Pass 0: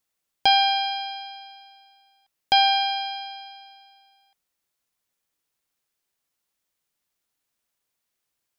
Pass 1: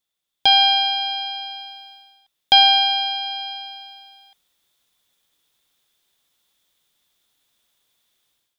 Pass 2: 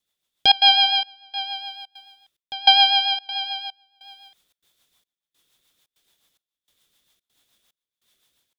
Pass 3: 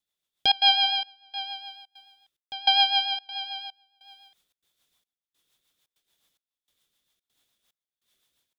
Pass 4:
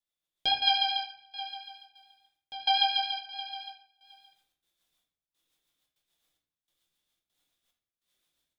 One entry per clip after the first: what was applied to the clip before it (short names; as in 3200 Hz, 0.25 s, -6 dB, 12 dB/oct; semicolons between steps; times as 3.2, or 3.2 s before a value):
AGC gain up to 13 dB; bell 3500 Hz +13.5 dB 0.27 oct; gain -3.5 dB
step gate "xxxxx.xxxx..." 146 bpm -24 dB; rotary speaker horn 7 Hz; gain +5 dB
noise-modulated level, depth 65%; gain -3.5 dB
shoebox room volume 99 m³, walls mixed, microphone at 0.78 m; gain -7.5 dB